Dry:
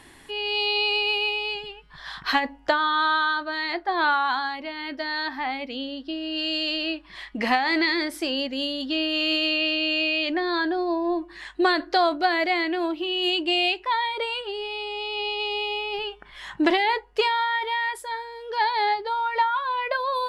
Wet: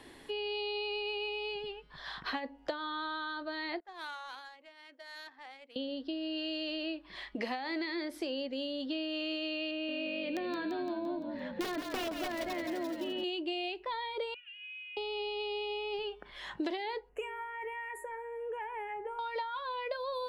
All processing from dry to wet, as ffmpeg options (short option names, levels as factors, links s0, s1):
-filter_complex "[0:a]asettb=1/sr,asplit=3[s0][s1][s2];[s0]atrim=end=3.804[s3];[s1]atrim=start=3.8:end=5.76,asetpts=PTS-STARTPTS,afade=t=in:d=0.004:c=qsin,afade=t=out:st=1.956:d=0.004:c=qsin,lowpass=4700,aderivative,adynamicsmooth=sensitivity=7:basefreq=1400[s4];[s2]atrim=start=5.756[s5];[s3][s4]acrossfade=d=0.004:c1=hsin:c2=qsin[s6];[s6][s5]acrossfade=d=0.004:c1=qsin:c2=hsin,asettb=1/sr,asplit=3[s7][s8][s9];[s7]atrim=end=9.714[s10];[s8]atrim=start=9.71:end=13.24,asetpts=PTS-STARTPTS,afade=t=in:d=0.004:c=qsin,afade=t=out:st=3.526:d=0.004:c=qsin,lowpass=2600,aeval=exprs='(mod(6.31*val(0)+1,2)-1)/6.31':c=same,asplit=7[s11][s12][s13][s14][s15][s16][s17];[s12]adelay=171,afreqshift=-48,volume=0.398[s18];[s13]adelay=342,afreqshift=-96,volume=0.214[s19];[s14]adelay=513,afreqshift=-144,volume=0.116[s20];[s15]adelay=684,afreqshift=-192,volume=0.0624[s21];[s16]adelay=855,afreqshift=-240,volume=0.0339[s22];[s17]adelay=1026,afreqshift=-288,volume=0.0182[s23];[s11][s18][s19][s20][s21][s22][s23]amix=inputs=7:normalize=0,atrim=end_sample=155673[s24];[s9]atrim=start=13.236[s25];[s10][s24]acrossfade=d=0.004:c1=hsin:c2=qsin[s26];[s26][s25]acrossfade=d=0.004:c1=qsin:c2=hsin,asettb=1/sr,asplit=3[s27][s28][s29];[s27]atrim=end=14.344[s30];[s28]atrim=start=14.34:end=14.97,asetpts=PTS-STARTPTS,afade=t=in:d=0.004:c=qsin,afade=t=out:st=0.626:d=0.004:c=qsin,asuperpass=centerf=2100:order=8:qfactor=1.8,acompressor=threshold=0.0112:ratio=2.5:attack=3.2:release=140:knee=1:detection=peak[s31];[s29]atrim=start=14.966[s32];[s30][s31]acrossfade=d=0.004:c1=hsin:c2=qsin[s33];[s33][s32]acrossfade=d=0.004:c1=qsin:c2=hsin,asettb=1/sr,asplit=3[s34][s35][s36];[s34]atrim=end=17.094[s37];[s35]atrim=start=17.09:end=19.19,asetpts=PTS-STARTPTS,afade=t=in:d=0.004:c=qsin,afade=t=out:st=2.096:d=0.004:c=qsin,bandreject=f=103.6:t=h:w=4,bandreject=f=207.2:t=h:w=4,bandreject=f=310.8:t=h:w=4,bandreject=f=414.4:t=h:w=4,bandreject=f=518:t=h:w=4,bandreject=f=621.6:t=h:w=4,bandreject=f=725.2:t=h:w=4,bandreject=f=828.8:t=h:w=4,bandreject=f=932.4:t=h:w=4,bandreject=f=1036:t=h:w=4,bandreject=f=1139.6:t=h:w=4,bandreject=f=1243.2:t=h:w=4,bandreject=f=1346.8:t=h:w=4,bandreject=f=1450.4:t=h:w=4,bandreject=f=1554:t=h:w=4,bandreject=f=1657.6:t=h:w=4,bandreject=f=1761.2:t=h:w=4,bandreject=f=1864.8:t=h:w=4,bandreject=f=1968.4:t=h:w=4,bandreject=f=2072:t=h:w=4,acrossover=split=190|3000[s38][s39][s40];[s39]acompressor=threshold=0.01:ratio=2:attack=3.2:release=140:knee=2.83:detection=peak[s41];[s38][s41][s40]amix=inputs=3:normalize=0,asuperstop=centerf=4400:order=12:qfactor=1.1[s42];[s36]atrim=start=19.186[s43];[s37][s42]acrossfade=d=0.004:c1=hsin:c2=qsin[s44];[s44][s43]acrossfade=d=0.004:c1=qsin:c2=hsin,equalizer=f=250:t=o:w=1:g=4,equalizer=f=500:t=o:w=1:g=9,equalizer=f=4000:t=o:w=1:g=4,equalizer=f=8000:t=o:w=1:g=-3,acrossover=split=260|3300[s45][s46][s47];[s45]acompressor=threshold=0.00794:ratio=4[s48];[s46]acompressor=threshold=0.0316:ratio=4[s49];[s47]acompressor=threshold=0.00708:ratio=4[s50];[s48][s49][s50]amix=inputs=3:normalize=0,volume=0.447"